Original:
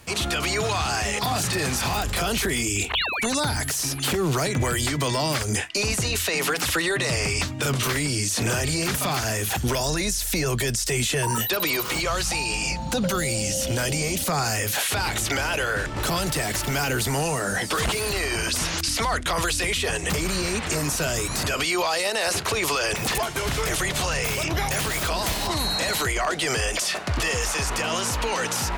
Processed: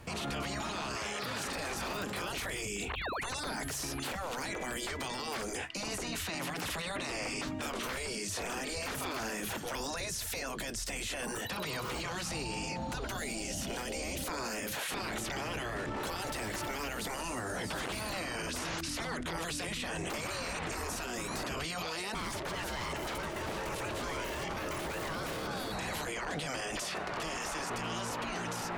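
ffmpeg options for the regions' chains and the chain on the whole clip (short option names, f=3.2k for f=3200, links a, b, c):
-filter_complex "[0:a]asettb=1/sr,asplit=3[a][b][c];[a]atrim=end=0.964[d];[b]atrim=start=0.96:end=1.46,asetpts=PTS-STARTPTS,afade=t=in:d=0.004:c=qsin,afade=t=out:st=0.496:d=0.004:c=qsin,highpass=f=440:p=1,equalizer=f=1.8k:w=0.33:g=6.5[e];[c]atrim=start=1.456[f];[d][e]acrossfade=d=0.004:c1=hsin:c2=qsin[g];[g][f]acrossfade=d=0.004:c1=qsin:c2=hsin,asettb=1/sr,asplit=3[h][i][j];[h]atrim=end=22.144[k];[i]atrim=start=22.14:end=25.72,asetpts=PTS-STARTPTS,afade=t=in:d=0.004:c=qsin,afade=t=out:st=3.576:d=0.004:c=qsin,aecho=1:1:345:0.316,atrim=end_sample=157878,aeval=exprs='0.106*(abs(mod(val(0)/0.106+3,4)-2)-1)':c=same,aeval=exprs='val(0)*sin(2*PI*490*n/s)':c=same[l];[j]atrim=start=25.716[m];[k][l]acrossfade=d=0.004:c1=hsin:c2=qsin[n];[n][m]acrossfade=d=0.004:c1=qsin:c2=hsin,afftfilt=real='re*lt(hypot(re,im),0.178)':imag='im*lt(hypot(re,im),0.178)':win_size=1024:overlap=0.75,highshelf=f=2.6k:g=-11.5,alimiter=level_in=4.5dB:limit=-24dB:level=0:latency=1:release=21,volume=-4.5dB"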